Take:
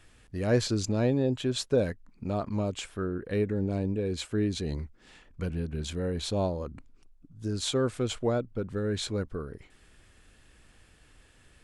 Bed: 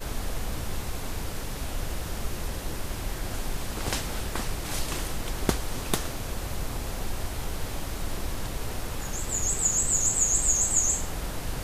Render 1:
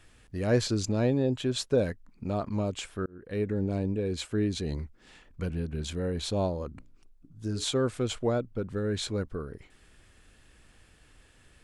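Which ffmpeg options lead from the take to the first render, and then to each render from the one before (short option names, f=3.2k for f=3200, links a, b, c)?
-filter_complex "[0:a]asettb=1/sr,asplit=3[a][b][c];[a]atrim=end=6.704[d];[b]atrim=start=6.7:end=7.64,asetpts=PTS-STARTPTS,afade=t=in:d=0.004:c=qsin,afade=t=out:st=0.936:d=0.004:c=qsin,bandreject=f=60:t=h:w=6,bandreject=f=120:t=h:w=6,bandreject=f=180:t=h:w=6,bandreject=f=240:t=h:w=6,bandreject=f=300:t=h:w=6,bandreject=f=360:t=h:w=6,bandreject=f=420:t=h:w=6,bandreject=f=480:t=h:w=6,bandreject=f=540:t=h:w=6,bandreject=f=600:t=h:w=6[e];[c]atrim=start=7.636[f];[d][e]acrossfade=d=0.004:c1=hsin:c2=qsin[g];[g][f]acrossfade=d=0.004:c1=qsin:c2=hsin,asplit=2[h][i];[h]atrim=end=3.06,asetpts=PTS-STARTPTS,afade=t=out:st=3.056:d=0.004:c=hsin[j];[i]atrim=start=3.06,asetpts=PTS-STARTPTS,afade=t=in:d=0.45[k];[j][k]concat=n=2:v=0:a=1"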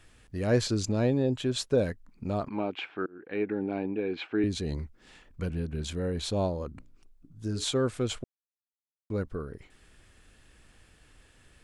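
-filter_complex "[0:a]asettb=1/sr,asplit=3[a][b][c];[a]atrim=end=2.484[d];[b]atrim=start=2.48:end=4.44,asetpts=PTS-STARTPTS,afade=t=in:d=0.004:c=qsin,afade=t=out:st=1.956:d=0.004:c=qsin,highpass=250,equalizer=f=320:t=q:w=4:g=6,equalizer=f=550:t=q:w=4:g=-4,equalizer=f=800:t=q:w=4:g=9,equalizer=f=1.5k:t=q:w=4:g=5,equalizer=f=2.4k:t=q:w=4:g=7,lowpass=f=3.5k:w=0.5412,lowpass=f=3.5k:w=1.3066[e];[c]atrim=start=4.436[f];[d][e]acrossfade=d=0.004:c1=hsin:c2=qsin[g];[g][f]acrossfade=d=0.004:c1=qsin:c2=hsin,asplit=3[h][i][j];[h]atrim=end=8.24,asetpts=PTS-STARTPTS,afade=t=out:st=8.236:d=0.004:c=hsin[k];[i]atrim=start=8.24:end=9.1,asetpts=PTS-STARTPTS,volume=0[l];[j]atrim=start=9.1,asetpts=PTS-STARTPTS,afade=t=in:d=0.004:c=hsin[m];[k][l][m]concat=n=3:v=0:a=1"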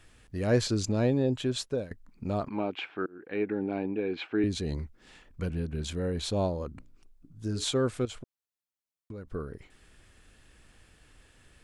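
-filter_complex "[0:a]asettb=1/sr,asplit=3[a][b][c];[a]atrim=end=8.054[d];[b]atrim=start=8.05:end=9.28,asetpts=PTS-STARTPTS,afade=t=in:d=0.004:c=qsin,afade=t=out:st=1.226:d=0.004:c=qsin,acompressor=threshold=-38dB:ratio=6:attack=3.2:release=140:knee=1:detection=peak[e];[c]atrim=start=9.276[f];[d][e]acrossfade=d=0.004:c1=hsin:c2=qsin[g];[g][f]acrossfade=d=0.004:c1=qsin:c2=hsin,asplit=2[h][i];[h]atrim=end=1.91,asetpts=PTS-STARTPTS,afade=t=out:st=1.35:d=0.56:c=qsin:silence=0.11885[j];[i]atrim=start=1.91,asetpts=PTS-STARTPTS,afade=t=in:d=0.004:c=hsin:silence=0.11885[k];[j][k]concat=n=2:v=0:a=1"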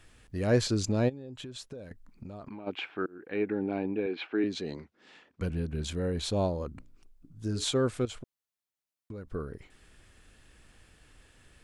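-filter_complex "[0:a]asplit=3[a][b][c];[a]afade=t=out:st=1.08:d=0.02[d];[b]acompressor=threshold=-38dB:ratio=16:attack=3.2:release=140:knee=1:detection=peak,afade=t=in:st=1.08:d=0.02,afade=t=out:st=2.66:d=0.02[e];[c]afade=t=in:st=2.66:d=0.02[f];[d][e][f]amix=inputs=3:normalize=0,asettb=1/sr,asplit=3[g][h][i];[g]atrim=end=4.064[j];[h]atrim=start=4.06:end=5.41,asetpts=PTS-STARTPTS,afade=t=in:d=0.004:c=qsin,afade=t=out:st=1.346:d=0.004:c=qsin,highpass=240,lowpass=5.1k[k];[i]atrim=start=5.406[l];[j][k]acrossfade=d=0.004:c1=hsin:c2=qsin[m];[m][l]acrossfade=d=0.004:c1=qsin:c2=hsin"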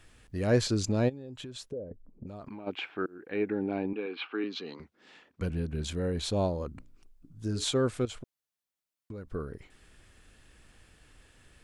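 -filter_complex "[0:a]asplit=3[a][b][c];[a]afade=t=out:st=1.7:d=0.02[d];[b]lowpass=f=510:t=q:w=2.4,afade=t=in:st=1.7:d=0.02,afade=t=out:st=2.26:d=0.02[e];[c]afade=t=in:st=2.26:d=0.02[f];[d][e][f]amix=inputs=3:normalize=0,asettb=1/sr,asplit=3[g][h][i];[g]atrim=end=3.934[j];[h]atrim=start=3.93:end=4.8,asetpts=PTS-STARTPTS,afade=t=in:d=0.004:c=qsin,afade=t=out:st=0.866:d=0.004:c=qsin,highpass=290,equalizer=f=360:t=q:w=4:g=-5,equalizer=f=610:t=q:w=4:g=-10,equalizer=f=1.2k:t=q:w=4:g=9,equalizer=f=1.8k:t=q:w=4:g=-4,equalizer=f=2.9k:t=q:w=4:g=5,lowpass=f=5.2k:w=0.5412,lowpass=f=5.2k:w=1.3066[k];[i]atrim=start=4.796[l];[j][k]acrossfade=d=0.004:c1=hsin:c2=qsin[m];[m][l]acrossfade=d=0.004:c1=qsin:c2=hsin"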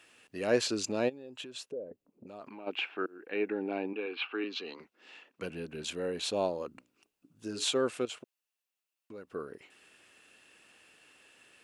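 -af "highpass=320,equalizer=f=2.7k:w=7.2:g=10"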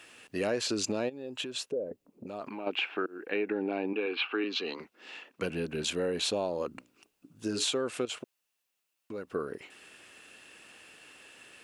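-filter_complex "[0:a]asplit=2[a][b];[b]alimiter=level_in=1.5dB:limit=-24dB:level=0:latency=1,volume=-1.5dB,volume=2dB[c];[a][c]amix=inputs=2:normalize=0,acompressor=threshold=-27dB:ratio=6"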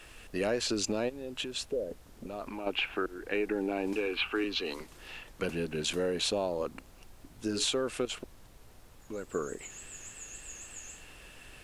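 -filter_complex "[1:a]volume=-23dB[a];[0:a][a]amix=inputs=2:normalize=0"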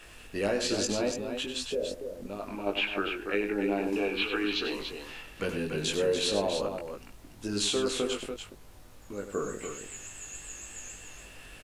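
-filter_complex "[0:a]asplit=2[a][b];[b]adelay=20,volume=-4dB[c];[a][c]amix=inputs=2:normalize=0,aecho=1:1:96.21|288.6:0.355|0.447"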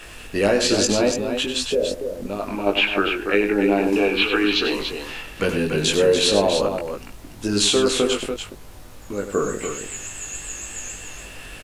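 -af "volume=10.5dB"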